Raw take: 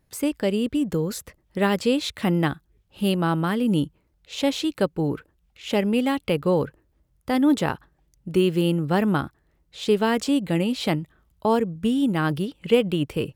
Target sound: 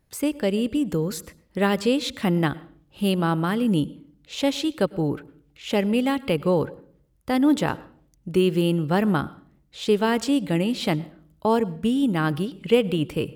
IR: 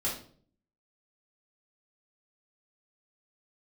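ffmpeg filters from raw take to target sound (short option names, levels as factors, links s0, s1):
-filter_complex "[0:a]asplit=2[s0][s1];[1:a]atrim=start_sample=2205,adelay=98[s2];[s1][s2]afir=irnorm=-1:irlink=0,volume=0.0473[s3];[s0][s3]amix=inputs=2:normalize=0"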